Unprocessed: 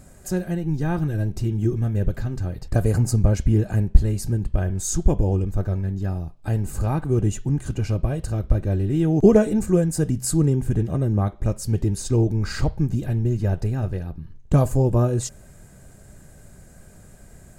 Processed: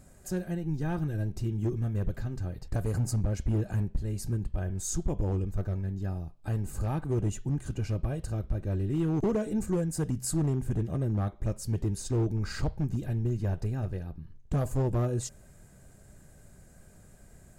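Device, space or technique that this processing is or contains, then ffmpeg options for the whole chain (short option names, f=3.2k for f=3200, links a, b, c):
limiter into clipper: -af "alimiter=limit=-9dB:level=0:latency=1:release=246,asoftclip=type=hard:threshold=-14.5dB,volume=-7.5dB"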